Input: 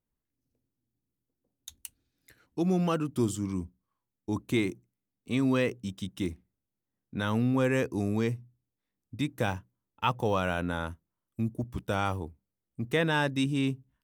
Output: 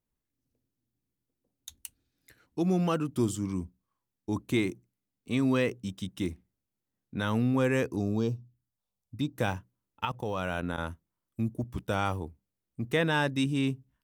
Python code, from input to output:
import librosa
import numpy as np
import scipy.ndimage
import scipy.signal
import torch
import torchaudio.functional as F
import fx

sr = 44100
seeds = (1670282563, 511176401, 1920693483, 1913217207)

y = fx.env_phaser(x, sr, low_hz=280.0, high_hz=2000.0, full_db=-31.5, at=(7.95, 9.36))
y = fx.level_steps(y, sr, step_db=16, at=(10.05, 10.78))